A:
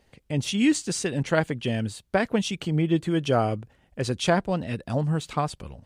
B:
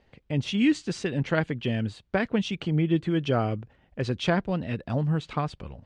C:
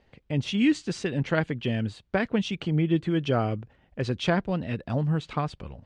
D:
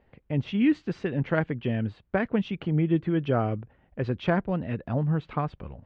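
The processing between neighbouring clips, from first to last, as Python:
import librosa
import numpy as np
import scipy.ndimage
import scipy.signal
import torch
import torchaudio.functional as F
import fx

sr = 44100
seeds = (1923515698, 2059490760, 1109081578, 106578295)

y1 = scipy.signal.sosfilt(scipy.signal.butter(2, 3600.0, 'lowpass', fs=sr, output='sos'), x)
y1 = fx.dynamic_eq(y1, sr, hz=750.0, q=0.9, threshold_db=-33.0, ratio=4.0, max_db=-5)
y2 = y1
y3 = scipy.signal.sosfilt(scipy.signal.butter(2, 2100.0, 'lowpass', fs=sr, output='sos'), y2)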